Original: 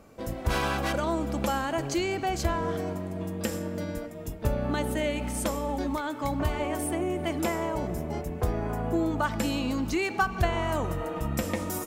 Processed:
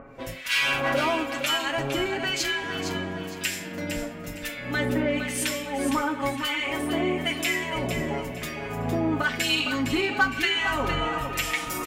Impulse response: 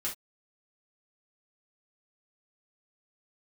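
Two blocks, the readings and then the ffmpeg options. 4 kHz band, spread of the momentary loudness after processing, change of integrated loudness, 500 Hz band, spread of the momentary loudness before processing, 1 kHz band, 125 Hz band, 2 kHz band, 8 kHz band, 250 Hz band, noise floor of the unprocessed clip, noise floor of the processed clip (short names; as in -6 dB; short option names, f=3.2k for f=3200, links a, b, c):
+11.5 dB, 9 LU, +3.5 dB, +0.5 dB, 6 LU, +1.0 dB, -3.0 dB, +9.0 dB, +4.5 dB, +1.0 dB, -38 dBFS, -37 dBFS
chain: -filter_complex "[0:a]equalizer=f=2.4k:t=o:w=1.7:g=11.5,aecho=1:1:7.3:0.89,acompressor=mode=upward:threshold=-43dB:ratio=2.5,acrossover=split=1600[a][b];[a]aeval=exprs='val(0)*(1-1/2+1/2*cos(2*PI*1*n/s))':c=same[c];[b]aeval=exprs='val(0)*(1-1/2-1/2*cos(2*PI*1*n/s))':c=same[d];[c][d]amix=inputs=2:normalize=0,asoftclip=type=tanh:threshold=-17dB,aecho=1:1:460|920|1380|1840:0.398|0.123|0.0383|0.0119,asplit=2[e][f];[1:a]atrim=start_sample=2205[g];[f][g]afir=irnorm=-1:irlink=0,volume=-7.5dB[h];[e][h]amix=inputs=2:normalize=0"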